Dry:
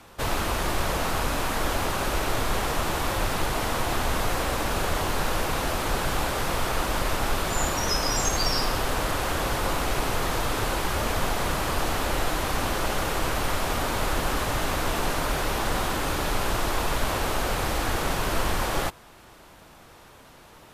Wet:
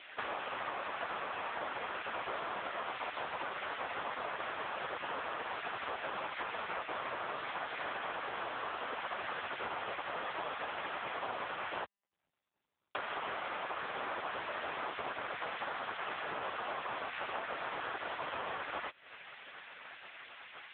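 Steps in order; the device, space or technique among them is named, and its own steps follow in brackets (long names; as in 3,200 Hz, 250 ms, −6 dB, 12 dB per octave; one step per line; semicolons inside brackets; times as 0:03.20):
gate on every frequency bin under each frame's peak −10 dB weak
0:11.84–0:12.95: inverse Chebyshev band-stop filter 140–6,200 Hz, stop band 80 dB
voicemail (band-pass filter 440–3,200 Hz; downward compressor 12 to 1, threshold −45 dBFS, peak gain reduction 19 dB; level +12 dB; AMR narrowband 6.7 kbit/s 8,000 Hz)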